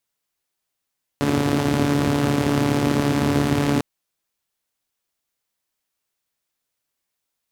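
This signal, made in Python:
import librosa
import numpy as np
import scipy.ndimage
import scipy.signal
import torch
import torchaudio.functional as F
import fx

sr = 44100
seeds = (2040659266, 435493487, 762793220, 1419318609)

y = fx.engine_four(sr, seeds[0], length_s=2.6, rpm=4300, resonances_hz=(120.0, 240.0))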